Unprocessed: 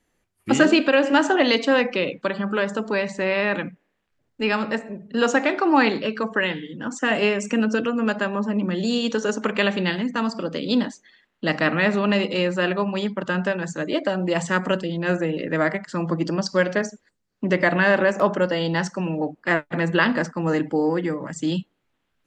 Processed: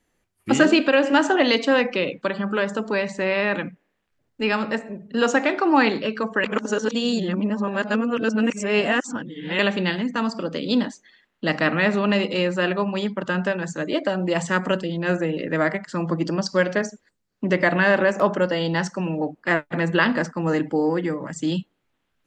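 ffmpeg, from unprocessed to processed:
-filter_complex "[0:a]asplit=3[a][b][c];[a]atrim=end=6.442[d];[b]atrim=start=6.438:end=9.592,asetpts=PTS-STARTPTS,areverse[e];[c]atrim=start=9.588[f];[d][e]acrossfade=d=0.004:c1=hsin:c2=hsin[g];[g][f]acrossfade=d=0.004:c1=hsin:c2=hsin"

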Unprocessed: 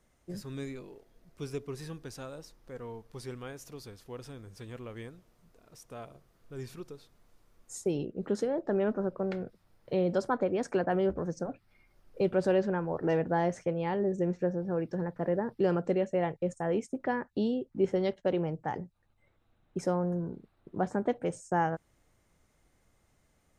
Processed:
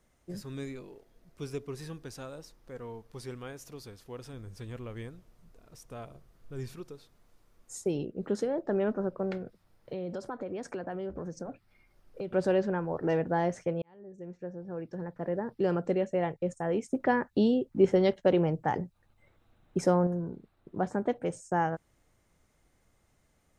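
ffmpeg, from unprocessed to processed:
-filter_complex "[0:a]asettb=1/sr,asplit=3[a][b][c];[a]atrim=end=4.334[d];[b]atrim=start=4.33:end=6.73,asetpts=PTS-STARTPTS,afade=t=in:d=0.004:c=qsin,afade=t=out:st=2.396:d=0.004:c=qsin,lowshelf=f=110:g=9[e];[c]atrim=start=6.726[f];[d][e]acrossfade=d=0.004:c1=hsin:c2=qsin[g];[g][f]acrossfade=d=0.004:c1=qsin:c2=hsin,asettb=1/sr,asplit=3[h][i][j];[h]atrim=end=9.374[k];[i]atrim=start=9.37:end=12.34,asetpts=PTS-STARTPTS,afade=t=in:d=0.004:c=qsin,afade=t=out:st=2.966:d=0.004:c=qsin,acompressor=threshold=-34dB:ratio=4:attack=3.2:release=140:knee=1:detection=peak[l];[j]atrim=start=12.336[m];[k][l]acrossfade=d=0.004:c1=hsin:c2=qsin[n];[n][m]acrossfade=d=0.004:c1=qsin:c2=hsin,asettb=1/sr,asplit=3[o][p][q];[o]atrim=end=16.864[r];[p]atrim=start=16.86:end=20.07,asetpts=PTS-STARTPTS,afade=t=in:d=0.004:c=qsin,afade=t=out:st=3.206:d=0.004:c=qsin,acontrast=26[s];[q]atrim=start=20.066[t];[r][s]acrossfade=d=0.004:c1=hsin:c2=qsin[u];[u][t]acrossfade=d=0.004:c1=qsin:c2=hsin,asplit=2[v][w];[v]atrim=end=13.82,asetpts=PTS-STARTPTS,afade=t=out:st=13.816:d=0.004:c=hsin[x];[w]atrim=start=13.82,asetpts=PTS-STARTPTS,afade=t=in:d=2.03[y];[x][y]concat=n=2:v=0:a=1"

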